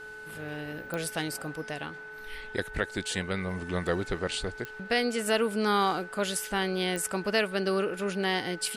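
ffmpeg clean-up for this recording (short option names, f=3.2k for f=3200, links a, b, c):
-af "adeclick=t=4,bandreject=f=428.9:t=h:w=4,bandreject=f=857.8:t=h:w=4,bandreject=f=1.2867k:t=h:w=4,bandreject=f=1.7156k:t=h:w=4,bandreject=f=2.1445k:t=h:w=4,bandreject=f=2.5734k:t=h:w=4,bandreject=f=1.5k:w=30"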